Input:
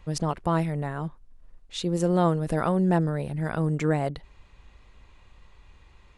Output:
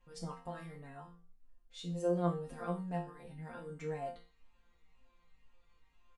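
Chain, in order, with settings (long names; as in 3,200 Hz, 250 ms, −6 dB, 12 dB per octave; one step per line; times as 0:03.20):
resonators tuned to a chord F3 sus4, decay 0.38 s
barber-pole flanger 5 ms −2 Hz
level +5 dB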